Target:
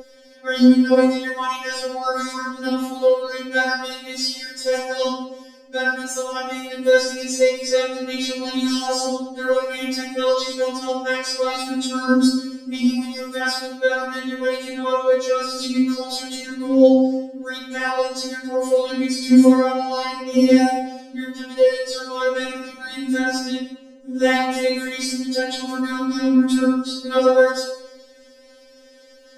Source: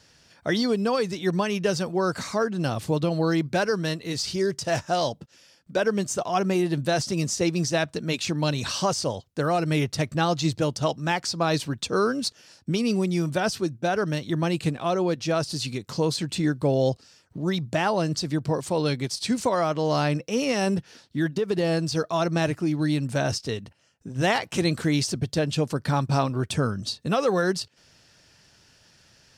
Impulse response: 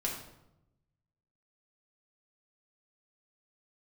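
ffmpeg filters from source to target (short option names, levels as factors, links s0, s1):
-filter_complex "[1:a]atrim=start_sample=2205,asetrate=41454,aresample=44100[s0];[0:a][s0]afir=irnorm=-1:irlink=0,aeval=exprs='val(0)+0.0891*sin(2*PI*450*n/s)':c=same,afftfilt=real='re*3.46*eq(mod(b,12),0)':imag='im*3.46*eq(mod(b,12),0)':win_size=2048:overlap=0.75,volume=1.5"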